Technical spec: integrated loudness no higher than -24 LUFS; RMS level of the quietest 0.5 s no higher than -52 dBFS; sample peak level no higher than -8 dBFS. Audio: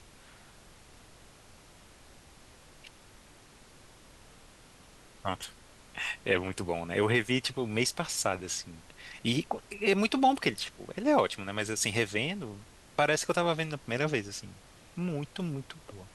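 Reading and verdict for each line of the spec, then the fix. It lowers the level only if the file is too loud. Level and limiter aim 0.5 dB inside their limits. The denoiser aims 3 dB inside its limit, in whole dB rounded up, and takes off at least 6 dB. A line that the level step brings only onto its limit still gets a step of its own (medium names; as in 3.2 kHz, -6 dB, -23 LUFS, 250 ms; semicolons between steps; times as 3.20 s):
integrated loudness -31.0 LUFS: pass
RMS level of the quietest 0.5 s -56 dBFS: pass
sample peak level -12.0 dBFS: pass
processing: none needed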